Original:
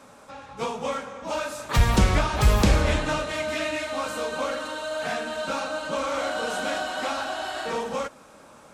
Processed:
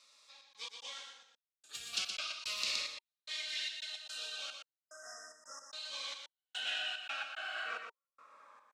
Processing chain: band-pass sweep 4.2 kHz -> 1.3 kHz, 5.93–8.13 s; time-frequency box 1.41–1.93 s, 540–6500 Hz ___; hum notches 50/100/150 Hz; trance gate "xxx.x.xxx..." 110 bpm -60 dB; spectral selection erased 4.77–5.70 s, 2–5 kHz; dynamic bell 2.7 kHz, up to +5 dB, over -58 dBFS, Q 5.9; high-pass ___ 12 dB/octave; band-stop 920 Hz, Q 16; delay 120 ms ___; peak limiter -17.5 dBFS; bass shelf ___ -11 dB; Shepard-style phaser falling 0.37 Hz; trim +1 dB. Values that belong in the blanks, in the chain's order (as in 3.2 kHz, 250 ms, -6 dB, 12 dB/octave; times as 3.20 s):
-11 dB, 56 Hz, -6 dB, 400 Hz